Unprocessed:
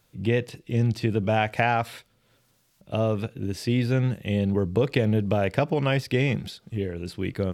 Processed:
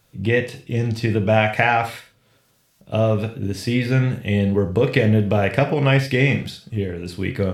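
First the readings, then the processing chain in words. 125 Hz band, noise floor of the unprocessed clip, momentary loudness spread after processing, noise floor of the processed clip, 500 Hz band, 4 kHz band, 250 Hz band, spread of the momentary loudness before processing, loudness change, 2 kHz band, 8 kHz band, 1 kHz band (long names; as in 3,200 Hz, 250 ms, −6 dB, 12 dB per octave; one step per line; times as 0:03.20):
+5.5 dB, −66 dBFS, 10 LU, −61 dBFS, +5.5 dB, +5.5 dB, +4.5 dB, 9 LU, +5.5 dB, +8.0 dB, +5.0 dB, +5.0 dB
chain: dynamic equaliser 2,000 Hz, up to +6 dB, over −45 dBFS, Q 2.8
reverb whose tail is shaped and stops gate 150 ms falling, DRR 4.5 dB
level +3.5 dB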